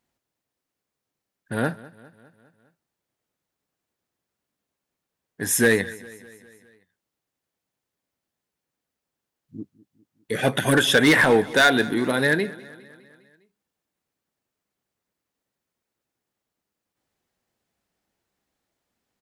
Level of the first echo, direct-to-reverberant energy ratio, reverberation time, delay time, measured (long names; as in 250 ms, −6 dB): −20.5 dB, no reverb audible, no reverb audible, 203 ms